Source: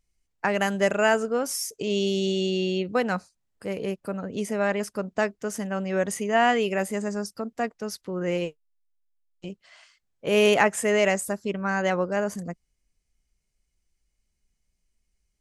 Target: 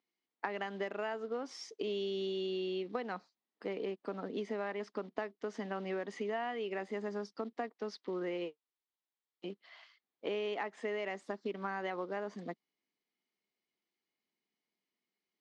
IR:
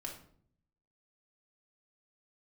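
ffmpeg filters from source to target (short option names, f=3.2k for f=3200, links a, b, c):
-af "acrusher=bits=6:mode=log:mix=0:aa=0.000001,highpass=f=250:w=0.5412,highpass=f=250:w=1.3066,equalizer=f=570:t=q:w=4:g=-7,equalizer=f=1.5k:t=q:w=4:g=-6,equalizer=f=2.6k:t=q:w=4:g=-6,lowpass=f=4k:w=0.5412,lowpass=f=4k:w=1.3066,acompressor=threshold=-33dB:ratio=10,volume=-1dB"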